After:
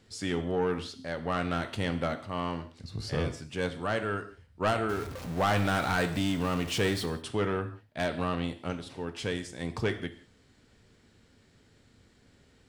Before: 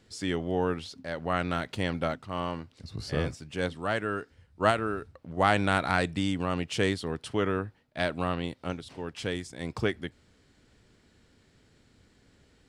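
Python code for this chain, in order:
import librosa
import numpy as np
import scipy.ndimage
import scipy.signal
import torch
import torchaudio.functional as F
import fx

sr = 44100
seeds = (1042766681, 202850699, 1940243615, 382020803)

y = fx.zero_step(x, sr, step_db=-36.0, at=(4.89, 7.06))
y = fx.rev_gated(y, sr, seeds[0], gate_ms=210, shape='falling', drr_db=8.5)
y = 10.0 ** (-20.0 / 20.0) * np.tanh(y / 10.0 ** (-20.0 / 20.0))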